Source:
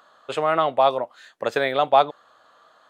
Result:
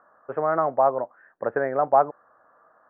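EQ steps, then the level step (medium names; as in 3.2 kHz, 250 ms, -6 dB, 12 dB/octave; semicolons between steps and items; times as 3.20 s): elliptic low-pass 1.7 kHz, stop band 70 dB; distance through air 450 m; 0.0 dB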